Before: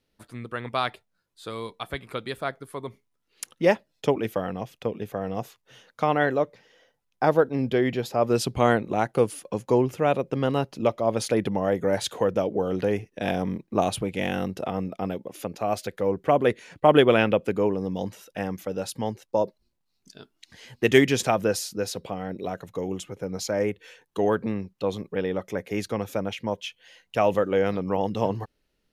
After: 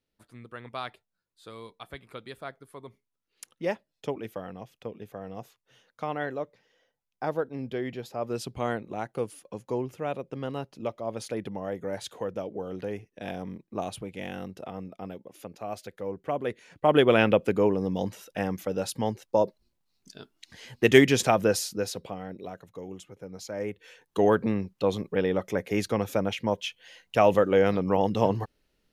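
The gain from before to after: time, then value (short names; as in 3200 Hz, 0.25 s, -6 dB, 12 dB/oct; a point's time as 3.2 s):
16.47 s -9.5 dB
17.28 s +0.5 dB
21.63 s +0.5 dB
22.66 s -10 dB
23.48 s -10 dB
24.19 s +1.5 dB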